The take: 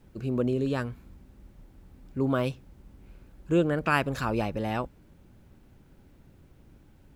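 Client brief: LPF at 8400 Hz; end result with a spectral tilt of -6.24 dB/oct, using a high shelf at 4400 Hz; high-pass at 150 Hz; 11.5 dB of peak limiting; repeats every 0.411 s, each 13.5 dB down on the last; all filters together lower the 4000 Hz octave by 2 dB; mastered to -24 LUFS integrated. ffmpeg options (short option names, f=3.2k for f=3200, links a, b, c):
-af "highpass=150,lowpass=8.4k,equalizer=f=4k:t=o:g=-5.5,highshelf=f=4.4k:g=5,alimiter=limit=-20dB:level=0:latency=1,aecho=1:1:411|822:0.211|0.0444,volume=8.5dB"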